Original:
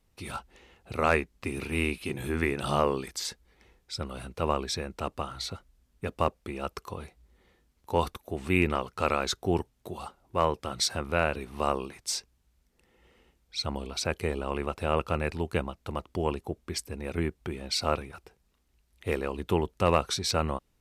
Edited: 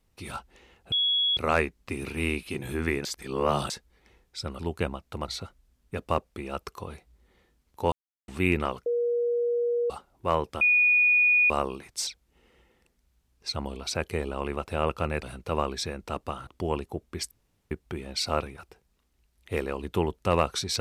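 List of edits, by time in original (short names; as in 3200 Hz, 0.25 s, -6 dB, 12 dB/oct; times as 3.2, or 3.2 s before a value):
0.92 add tone 3350 Hz -21.5 dBFS 0.45 s
2.6–3.25 reverse
4.14–5.38 swap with 15.33–16.02
8.02–8.38 mute
8.96–10 bleep 477 Hz -23 dBFS
10.71–11.6 bleep 2460 Hz -17.5 dBFS
12.17–13.59 reverse
16.86–17.26 room tone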